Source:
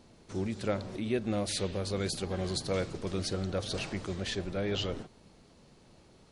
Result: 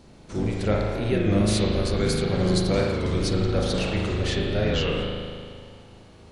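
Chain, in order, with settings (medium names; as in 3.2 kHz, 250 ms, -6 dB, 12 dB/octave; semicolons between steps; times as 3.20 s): octave divider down 1 oct, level -1 dB; spring tank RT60 2.1 s, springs 38 ms, chirp 20 ms, DRR -2 dB; warped record 33 1/3 rpm, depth 100 cents; trim +5 dB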